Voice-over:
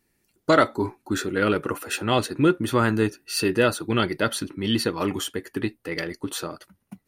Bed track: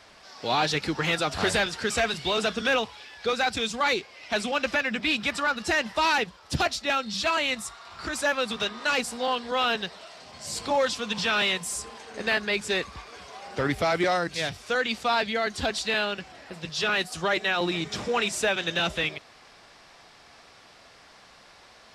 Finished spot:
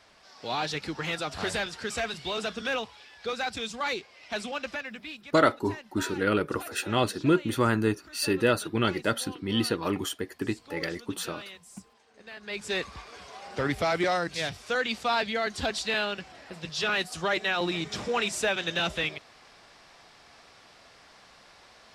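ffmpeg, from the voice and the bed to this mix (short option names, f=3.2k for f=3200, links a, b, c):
-filter_complex "[0:a]adelay=4850,volume=-3.5dB[a];[1:a]volume=11.5dB,afade=t=out:st=4.43:d=0.79:silence=0.211349,afade=t=in:st=12.36:d=0.46:silence=0.133352[b];[a][b]amix=inputs=2:normalize=0"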